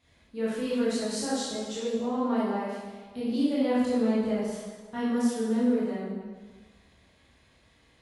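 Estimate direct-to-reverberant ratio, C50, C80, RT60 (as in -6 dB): -9.5 dB, -2.5 dB, 1.0 dB, 1.5 s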